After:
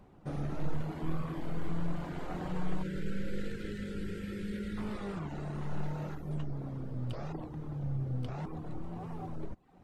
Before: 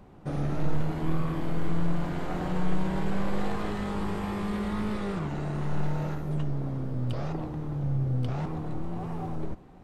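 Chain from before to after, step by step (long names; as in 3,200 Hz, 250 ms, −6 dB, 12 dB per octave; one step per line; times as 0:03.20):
reverb reduction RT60 0.55 s
gain on a spectral selection 0:02.83–0:04.78, 560–1,300 Hz −27 dB
level −5.5 dB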